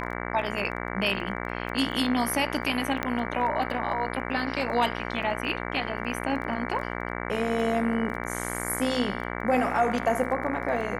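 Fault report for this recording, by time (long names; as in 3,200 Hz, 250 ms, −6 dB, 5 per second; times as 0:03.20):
mains buzz 60 Hz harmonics 38 −33 dBFS
surface crackle 12 per second −35 dBFS
0:03.03: click −13 dBFS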